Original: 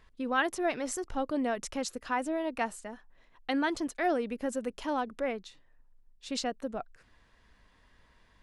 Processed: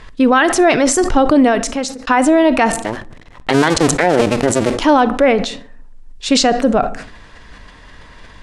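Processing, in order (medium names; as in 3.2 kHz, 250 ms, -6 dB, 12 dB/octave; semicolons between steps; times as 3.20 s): 2.71–4.83 s: cycle switcher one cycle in 2, muted; low-pass 9.7 kHz 24 dB/octave; 1.30–2.07 s: fade out; simulated room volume 900 m³, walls furnished, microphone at 0.4 m; loudness maximiser +24.5 dB; decay stretcher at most 83 dB/s; trim -2 dB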